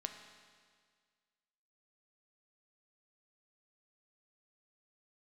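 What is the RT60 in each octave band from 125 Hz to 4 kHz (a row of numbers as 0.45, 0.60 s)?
1.8, 1.8, 1.8, 1.8, 1.8, 1.8 s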